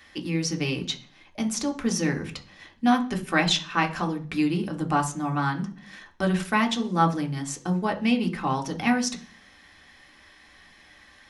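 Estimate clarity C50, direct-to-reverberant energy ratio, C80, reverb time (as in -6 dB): 14.0 dB, 2.0 dB, 19.0 dB, 0.45 s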